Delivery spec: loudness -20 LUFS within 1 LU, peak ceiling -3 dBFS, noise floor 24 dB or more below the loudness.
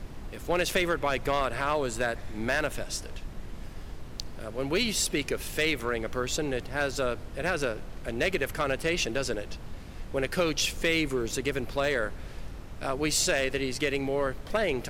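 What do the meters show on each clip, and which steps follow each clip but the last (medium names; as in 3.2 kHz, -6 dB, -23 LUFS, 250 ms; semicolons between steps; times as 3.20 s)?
clipped samples 0.2%; clipping level -17.5 dBFS; noise floor -42 dBFS; noise floor target -53 dBFS; loudness -29.0 LUFS; peak level -17.5 dBFS; loudness target -20.0 LUFS
-> clip repair -17.5 dBFS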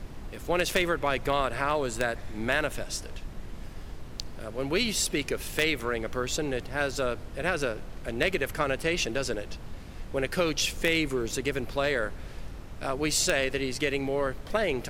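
clipped samples 0.0%; noise floor -42 dBFS; noise floor target -53 dBFS
-> noise print and reduce 11 dB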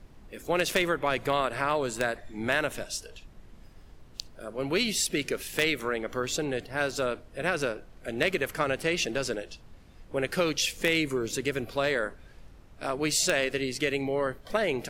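noise floor -52 dBFS; noise floor target -53 dBFS
-> noise print and reduce 6 dB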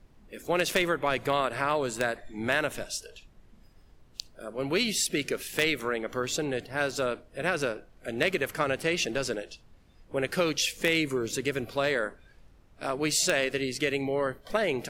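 noise floor -58 dBFS; loudness -29.0 LUFS; peak level -8.5 dBFS; loudness target -20.0 LUFS
-> trim +9 dB; peak limiter -3 dBFS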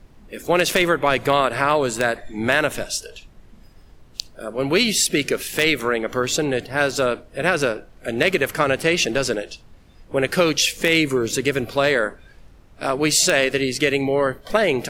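loudness -20.0 LUFS; peak level -3.0 dBFS; noise floor -49 dBFS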